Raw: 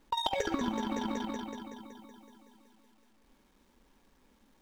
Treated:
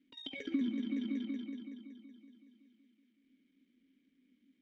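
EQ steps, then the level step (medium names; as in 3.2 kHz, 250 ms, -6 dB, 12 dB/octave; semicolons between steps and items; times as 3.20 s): vowel filter i; peaking EQ 180 Hz +4.5 dB 1 oct; dynamic bell 730 Hz, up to +4 dB, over -59 dBFS, Q 1; +2.5 dB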